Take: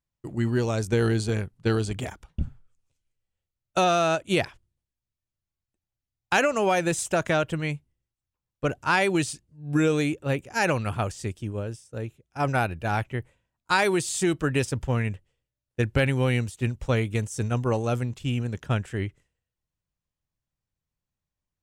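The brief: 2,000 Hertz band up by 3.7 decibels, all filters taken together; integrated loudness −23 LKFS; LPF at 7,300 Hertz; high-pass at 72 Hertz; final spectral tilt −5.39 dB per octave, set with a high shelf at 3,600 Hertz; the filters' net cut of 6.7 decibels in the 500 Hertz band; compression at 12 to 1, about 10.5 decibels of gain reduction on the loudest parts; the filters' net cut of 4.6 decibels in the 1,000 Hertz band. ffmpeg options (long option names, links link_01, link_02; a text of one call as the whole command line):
ffmpeg -i in.wav -af "highpass=72,lowpass=7300,equalizer=frequency=500:width_type=o:gain=-7.5,equalizer=frequency=1000:width_type=o:gain=-6.5,equalizer=frequency=2000:width_type=o:gain=9,highshelf=frequency=3600:gain=-5,acompressor=threshold=-28dB:ratio=12,volume=11dB" out.wav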